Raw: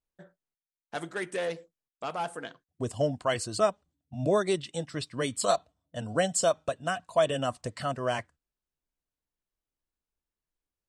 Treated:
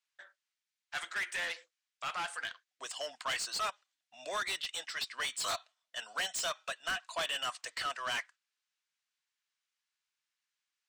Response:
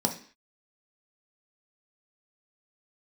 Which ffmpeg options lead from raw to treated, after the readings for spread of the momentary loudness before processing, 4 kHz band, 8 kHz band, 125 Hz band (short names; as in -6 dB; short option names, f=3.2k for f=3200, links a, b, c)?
13 LU, +2.0 dB, -4.5 dB, -26.5 dB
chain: -filter_complex "[0:a]asuperpass=centerf=3600:order=4:qfactor=0.54,aeval=exprs='0.0376*(abs(mod(val(0)/0.0376+3,4)-2)-1)':c=same,asplit=2[a][b];[b]highpass=f=720:p=1,volume=16dB,asoftclip=type=tanh:threshold=-28dB[c];[a][c]amix=inputs=2:normalize=0,lowpass=f=5.7k:p=1,volume=-6dB"